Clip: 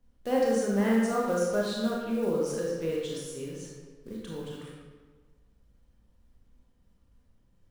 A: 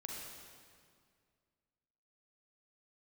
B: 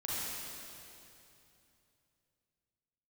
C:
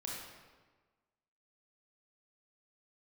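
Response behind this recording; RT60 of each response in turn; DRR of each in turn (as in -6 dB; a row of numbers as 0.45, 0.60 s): C; 2.1, 2.8, 1.4 s; -2.0, -8.0, -4.0 dB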